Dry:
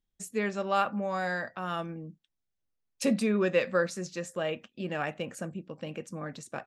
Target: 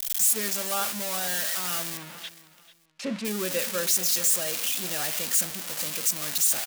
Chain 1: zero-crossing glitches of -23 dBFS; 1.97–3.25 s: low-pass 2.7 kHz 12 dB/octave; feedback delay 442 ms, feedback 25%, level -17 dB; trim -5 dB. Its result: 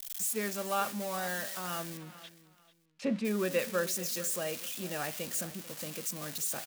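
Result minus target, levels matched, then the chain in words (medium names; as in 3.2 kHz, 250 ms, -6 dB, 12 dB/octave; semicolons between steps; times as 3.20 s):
zero-crossing glitches: distortion -12 dB
zero-crossing glitches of -11 dBFS; 1.97–3.25 s: low-pass 2.7 kHz 12 dB/octave; feedback delay 442 ms, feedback 25%, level -17 dB; trim -5 dB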